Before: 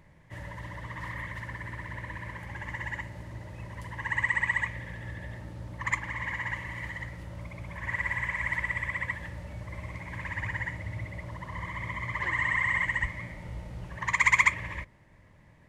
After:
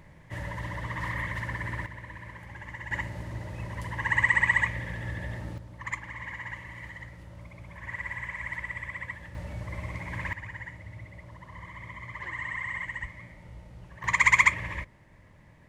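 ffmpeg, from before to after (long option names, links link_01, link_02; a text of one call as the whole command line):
ffmpeg -i in.wav -af "asetnsamples=nb_out_samples=441:pad=0,asendcmd='1.86 volume volume -4dB;2.91 volume volume 4.5dB;5.58 volume volume -5dB;9.35 volume volume 3dB;10.33 volume volume -7dB;14.04 volume volume 2dB',volume=5dB" out.wav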